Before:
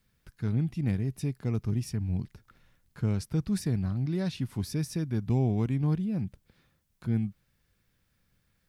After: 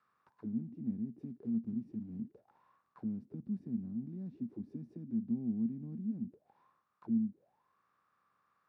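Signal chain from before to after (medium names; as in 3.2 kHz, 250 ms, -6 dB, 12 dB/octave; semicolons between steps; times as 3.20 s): spectral levelling over time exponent 0.6; 1.15–2.21 s: short-mantissa float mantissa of 2-bit; auto-wah 230–1300 Hz, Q 12, down, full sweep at -24 dBFS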